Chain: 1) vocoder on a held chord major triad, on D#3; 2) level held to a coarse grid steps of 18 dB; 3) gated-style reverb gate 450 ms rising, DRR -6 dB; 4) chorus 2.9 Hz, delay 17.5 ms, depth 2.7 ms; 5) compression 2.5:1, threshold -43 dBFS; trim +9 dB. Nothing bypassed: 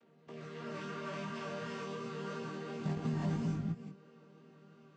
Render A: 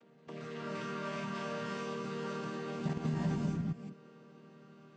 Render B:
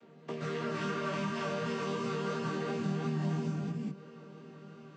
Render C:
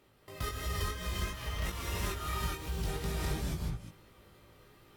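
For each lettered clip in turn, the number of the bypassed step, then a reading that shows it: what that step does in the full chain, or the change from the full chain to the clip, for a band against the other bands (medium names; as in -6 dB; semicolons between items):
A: 4, loudness change +1.5 LU; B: 2, crest factor change -2.5 dB; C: 1, 8 kHz band +12.0 dB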